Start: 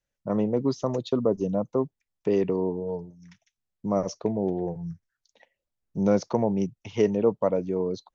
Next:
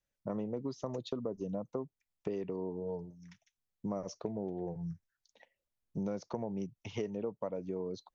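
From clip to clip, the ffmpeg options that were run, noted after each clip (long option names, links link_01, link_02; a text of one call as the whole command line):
ffmpeg -i in.wav -af "acompressor=threshold=-30dB:ratio=6,volume=-4dB" out.wav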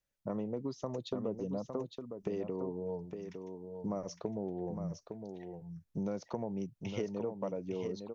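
ffmpeg -i in.wav -af "aecho=1:1:859:0.447" out.wav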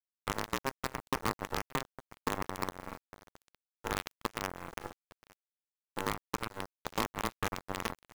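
ffmpeg -i in.wav -af "aeval=exprs='0.0794*(cos(1*acos(clip(val(0)/0.0794,-1,1)))-cos(1*PI/2))+0.000562*(cos(5*acos(clip(val(0)/0.0794,-1,1)))-cos(5*PI/2))+0.0141*(cos(7*acos(clip(val(0)/0.0794,-1,1)))-cos(7*PI/2))':channel_layout=same,aeval=exprs='val(0)*sin(2*PI*670*n/s)':channel_layout=same,acrusher=bits=6:dc=4:mix=0:aa=0.000001,volume=6dB" out.wav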